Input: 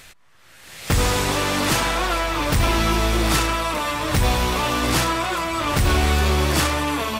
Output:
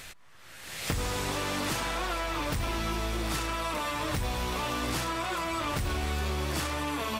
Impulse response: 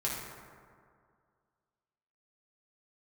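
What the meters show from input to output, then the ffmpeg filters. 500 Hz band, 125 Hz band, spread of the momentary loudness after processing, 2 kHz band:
-10.5 dB, -12.0 dB, 1 LU, -10.5 dB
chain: -af "acompressor=threshold=0.0355:ratio=6"

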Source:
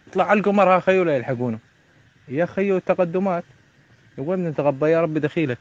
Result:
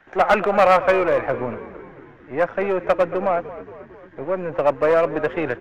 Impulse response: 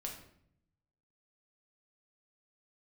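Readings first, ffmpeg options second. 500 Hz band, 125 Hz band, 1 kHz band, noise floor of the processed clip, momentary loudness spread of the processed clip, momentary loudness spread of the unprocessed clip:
+1.0 dB, -8.5 dB, +3.0 dB, -46 dBFS, 18 LU, 11 LU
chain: -filter_complex "[0:a]aeval=exprs='if(lt(val(0),0),0.447*val(0),val(0))':c=same,acrossover=split=480 2300:gain=0.178 1 0.0794[s0][s1][s2];[s0][s1][s2]amix=inputs=3:normalize=0,asplit=7[s3][s4][s5][s6][s7][s8][s9];[s4]adelay=226,afreqshift=-46,volume=0.158[s10];[s5]adelay=452,afreqshift=-92,volume=0.0955[s11];[s6]adelay=678,afreqshift=-138,volume=0.0569[s12];[s7]adelay=904,afreqshift=-184,volume=0.0343[s13];[s8]adelay=1130,afreqshift=-230,volume=0.0207[s14];[s9]adelay=1356,afreqshift=-276,volume=0.0123[s15];[s3][s10][s11][s12][s13][s14][s15]amix=inputs=7:normalize=0,acontrast=64,aeval=exprs='clip(val(0),-1,0.188)':c=same,volume=1.26"

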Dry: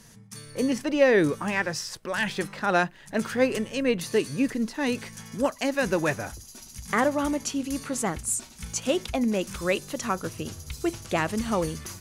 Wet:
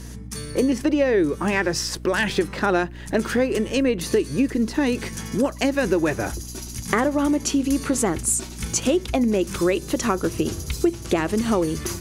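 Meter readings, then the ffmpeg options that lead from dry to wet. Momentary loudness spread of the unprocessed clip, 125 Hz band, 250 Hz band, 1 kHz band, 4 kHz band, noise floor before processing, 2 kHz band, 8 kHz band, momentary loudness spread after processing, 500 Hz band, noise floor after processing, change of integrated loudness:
10 LU, +5.5 dB, +6.0 dB, +2.0 dB, +4.5 dB, -50 dBFS, +2.0 dB, +6.0 dB, 5 LU, +4.0 dB, -36 dBFS, +4.5 dB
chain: -af "equalizer=f=350:t=o:w=0.64:g=10,acompressor=threshold=0.0501:ratio=6,aeval=exprs='val(0)+0.00562*(sin(2*PI*60*n/s)+sin(2*PI*2*60*n/s)/2+sin(2*PI*3*60*n/s)/3+sin(2*PI*4*60*n/s)/4+sin(2*PI*5*60*n/s)/5)':c=same,volume=2.66"

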